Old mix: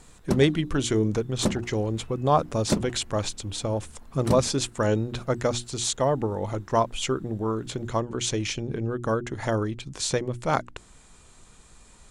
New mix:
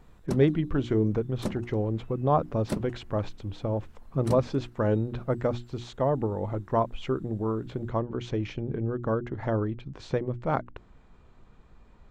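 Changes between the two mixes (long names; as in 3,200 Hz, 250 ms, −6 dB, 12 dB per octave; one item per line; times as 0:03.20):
speech: add head-to-tape spacing loss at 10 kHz 40 dB
background −6.5 dB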